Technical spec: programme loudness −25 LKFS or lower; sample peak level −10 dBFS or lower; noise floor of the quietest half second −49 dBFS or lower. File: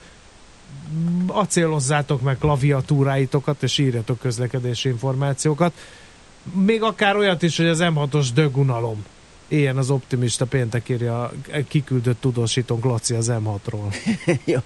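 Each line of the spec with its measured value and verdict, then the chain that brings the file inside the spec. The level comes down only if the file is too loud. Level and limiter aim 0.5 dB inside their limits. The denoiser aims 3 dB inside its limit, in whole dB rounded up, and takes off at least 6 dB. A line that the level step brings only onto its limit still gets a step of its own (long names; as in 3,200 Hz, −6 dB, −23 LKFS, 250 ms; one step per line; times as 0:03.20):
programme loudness −21.0 LKFS: out of spec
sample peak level −5.5 dBFS: out of spec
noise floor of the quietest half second −46 dBFS: out of spec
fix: level −4.5 dB
brickwall limiter −10.5 dBFS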